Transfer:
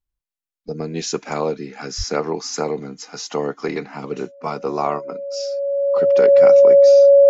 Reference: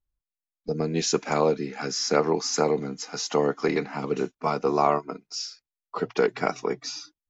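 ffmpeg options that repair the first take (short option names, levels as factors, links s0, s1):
-filter_complex "[0:a]bandreject=f=560:w=30,asplit=3[s0][s1][s2];[s0]afade=t=out:st=1.97:d=0.02[s3];[s1]highpass=f=140:w=0.5412,highpass=f=140:w=1.3066,afade=t=in:st=1.97:d=0.02,afade=t=out:st=2.09:d=0.02[s4];[s2]afade=t=in:st=2.09:d=0.02[s5];[s3][s4][s5]amix=inputs=3:normalize=0"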